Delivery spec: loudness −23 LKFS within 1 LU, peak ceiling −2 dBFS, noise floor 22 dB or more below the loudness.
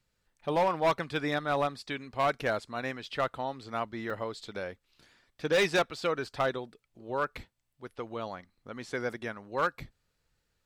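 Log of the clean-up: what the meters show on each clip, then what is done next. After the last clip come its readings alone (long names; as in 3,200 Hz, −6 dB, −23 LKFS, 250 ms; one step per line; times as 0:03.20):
share of clipped samples 0.7%; peaks flattened at −20.5 dBFS; number of dropouts 1; longest dropout 4.0 ms; integrated loudness −32.0 LKFS; sample peak −20.5 dBFS; target loudness −23.0 LKFS
→ clipped peaks rebuilt −20.5 dBFS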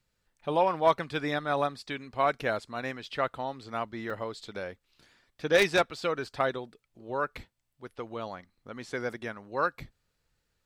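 share of clipped samples 0.0%; number of dropouts 1; longest dropout 4.0 ms
→ repair the gap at 0:04.10, 4 ms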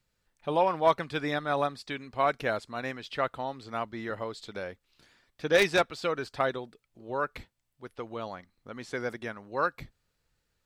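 number of dropouts 0; integrated loudness −31.0 LKFS; sample peak −11.5 dBFS; target loudness −23.0 LKFS
→ level +8 dB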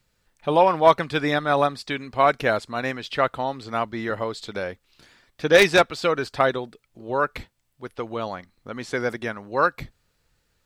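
integrated loudness −23.0 LKFS; sample peak −3.5 dBFS; background noise floor −70 dBFS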